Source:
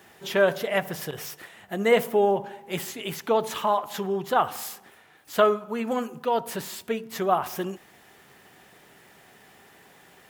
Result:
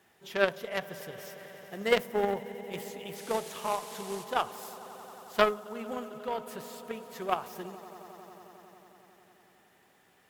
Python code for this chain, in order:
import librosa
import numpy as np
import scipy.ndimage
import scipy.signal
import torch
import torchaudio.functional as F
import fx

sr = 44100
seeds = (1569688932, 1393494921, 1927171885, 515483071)

y = fx.dmg_noise_band(x, sr, seeds[0], low_hz=1200.0, high_hz=12000.0, level_db=-38.0, at=(3.15, 4.23), fade=0.02)
y = fx.echo_swell(y, sr, ms=90, loudest=5, wet_db=-17)
y = fx.cheby_harmonics(y, sr, harmonics=(3, 6), levels_db=(-12, -44), full_scale_db=-6.5)